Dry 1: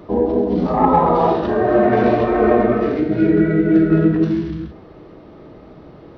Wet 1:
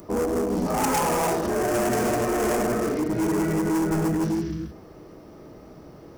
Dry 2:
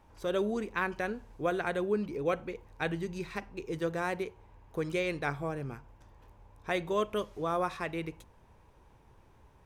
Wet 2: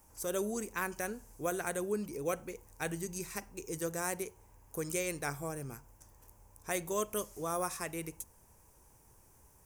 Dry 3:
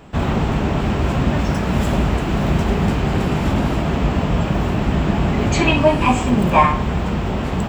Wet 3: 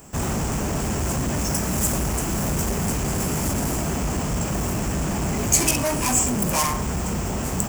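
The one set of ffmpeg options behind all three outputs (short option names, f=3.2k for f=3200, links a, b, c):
-af "asoftclip=type=hard:threshold=-16.5dB,aexciter=amount=12.5:drive=4.3:freq=5.6k,volume=-4.5dB"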